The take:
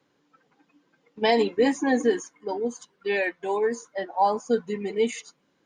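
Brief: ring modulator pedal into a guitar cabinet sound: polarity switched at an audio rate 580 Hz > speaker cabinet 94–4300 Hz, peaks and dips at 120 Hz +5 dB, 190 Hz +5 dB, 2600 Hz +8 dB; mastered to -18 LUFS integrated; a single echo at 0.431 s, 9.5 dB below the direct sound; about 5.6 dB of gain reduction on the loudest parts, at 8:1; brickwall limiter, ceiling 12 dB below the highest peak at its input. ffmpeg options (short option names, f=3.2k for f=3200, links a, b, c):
-af "acompressor=threshold=-22dB:ratio=8,alimiter=level_in=2dB:limit=-24dB:level=0:latency=1,volume=-2dB,aecho=1:1:431:0.335,aeval=exprs='val(0)*sgn(sin(2*PI*580*n/s))':c=same,highpass=94,equalizer=f=120:t=q:w=4:g=5,equalizer=f=190:t=q:w=4:g=5,equalizer=f=2.6k:t=q:w=4:g=8,lowpass=f=4.3k:w=0.5412,lowpass=f=4.3k:w=1.3066,volume=15dB"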